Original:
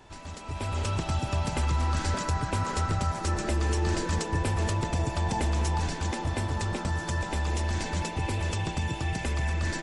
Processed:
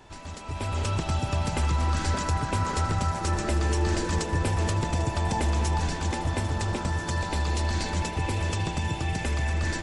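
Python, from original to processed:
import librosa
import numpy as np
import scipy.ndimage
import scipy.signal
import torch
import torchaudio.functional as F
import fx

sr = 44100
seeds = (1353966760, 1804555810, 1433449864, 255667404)

y = fx.peak_eq(x, sr, hz=4300.0, db=7.0, octaves=0.28, at=(7.1, 7.92))
y = fx.echo_split(y, sr, split_hz=620.0, low_ms=309, high_ms=797, feedback_pct=52, wet_db=-14.0)
y = y * 10.0 ** (1.5 / 20.0)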